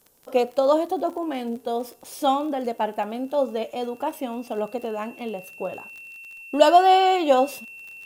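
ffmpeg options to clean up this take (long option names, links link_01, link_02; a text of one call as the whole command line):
ffmpeg -i in.wav -af "adeclick=threshold=4,bandreject=frequency=2700:width=30,agate=range=-21dB:threshold=-37dB" out.wav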